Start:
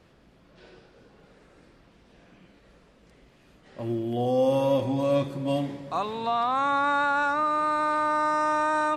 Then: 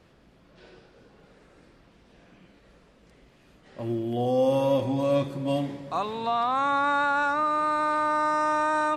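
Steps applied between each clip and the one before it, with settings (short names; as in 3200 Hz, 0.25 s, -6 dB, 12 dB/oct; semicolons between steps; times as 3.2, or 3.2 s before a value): nothing audible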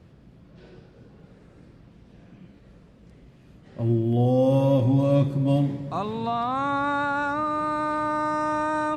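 bell 110 Hz +15 dB 2.9 oct; gain -3 dB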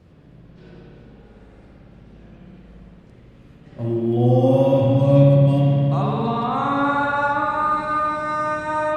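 spring tank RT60 2.5 s, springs 57 ms, chirp 30 ms, DRR -3.5 dB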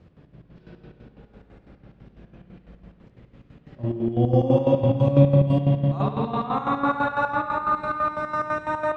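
chopper 6 Hz, depth 65%, duty 50%; air absorption 80 m; gain -1 dB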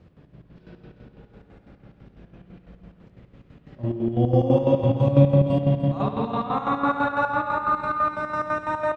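echo 0.296 s -12 dB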